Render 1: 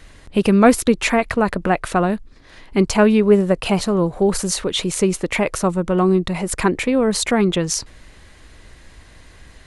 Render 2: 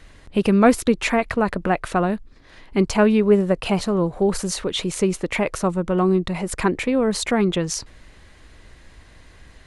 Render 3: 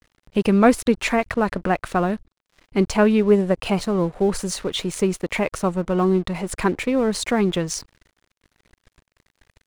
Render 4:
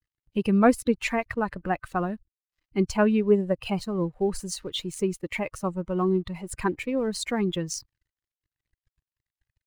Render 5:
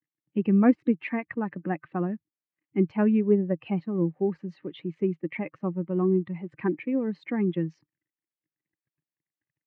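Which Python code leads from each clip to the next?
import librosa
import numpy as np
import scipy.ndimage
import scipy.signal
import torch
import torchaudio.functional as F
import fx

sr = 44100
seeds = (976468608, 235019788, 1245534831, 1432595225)

y1 = fx.high_shelf(x, sr, hz=6500.0, db=-5.0)
y1 = y1 * 10.0 ** (-2.5 / 20.0)
y2 = np.sign(y1) * np.maximum(np.abs(y1) - 10.0 ** (-41.0 / 20.0), 0.0)
y3 = fx.bin_expand(y2, sr, power=1.5)
y3 = y3 * 10.0 ** (-3.0 / 20.0)
y4 = fx.cabinet(y3, sr, low_hz=160.0, low_slope=24, high_hz=2100.0, hz=(160.0, 310.0, 460.0, 660.0, 1000.0, 1400.0), db=(5, 7, -5, -8, -8, -10))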